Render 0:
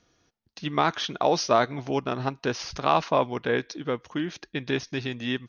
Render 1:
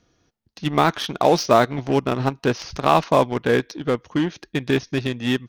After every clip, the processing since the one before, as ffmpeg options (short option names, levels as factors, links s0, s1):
-filter_complex "[0:a]lowshelf=f=470:g=5.5,asplit=2[s0][s1];[s1]acrusher=bits=3:mix=0:aa=0.5,volume=0.562[s2];[s0][s2]amix=inputs=2:normalize=0"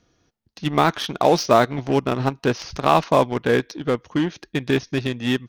-af anull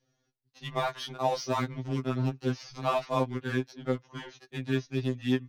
-filter_complex "[0:a]acrossover=split=120|1200|7700[s0][s1][s2][s3];[s3]asoftclip=type=hard:threshold=0.0106[s4];[s0][s1][s2][s4]amix=inputs=4:normalize=0,afftfilt=real='re*2.45*eq(mod(b,6),0)':imag='im*2.45*eq(mod(b,6),0)':win_size=2048:overlap=0.75,volume=0.355"